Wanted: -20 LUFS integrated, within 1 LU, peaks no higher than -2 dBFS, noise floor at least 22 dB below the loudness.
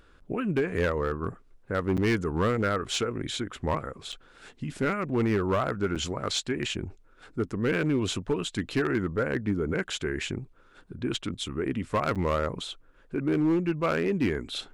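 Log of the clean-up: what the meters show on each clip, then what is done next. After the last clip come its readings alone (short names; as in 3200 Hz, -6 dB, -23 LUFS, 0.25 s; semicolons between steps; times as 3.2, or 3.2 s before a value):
clipped 1.5%; flat tops at -19.5 dBFS; dropouts 4; longest dropout 6.9 ms; loudness -29.0 LUFS; peak -19.5 dBFS; loudness target -20.0 LUFS
-> clip repair -19.5 dBFS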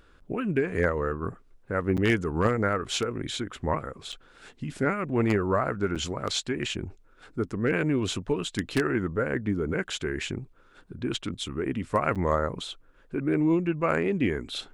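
clipped 0.0%; dropouts 4; longest dropout 6.9 ms
-> interpolate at 1.97/4.12/5.95/12.15, 6.9 ms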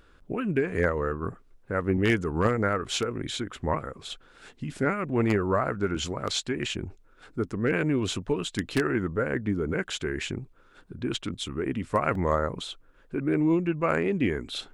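dropouts 0; loudness -28.0 LUFS; peak -10.5 dBFS; loudness target -20.0 LUFS
-> gain +8 dB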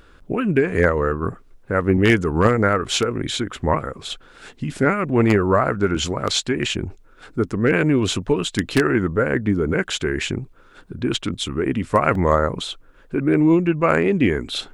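loudness -20.0 LUFS; peak -2.5 dBFS; noise floor -50 dBFS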